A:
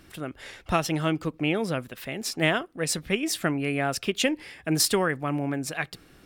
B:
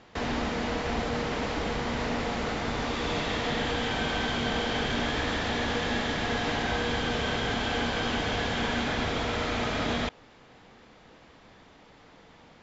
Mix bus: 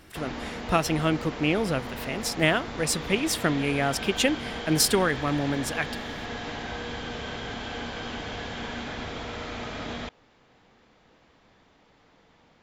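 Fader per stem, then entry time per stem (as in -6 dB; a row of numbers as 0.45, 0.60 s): +1.0, -6.0 dB; 0.00, 0.00 s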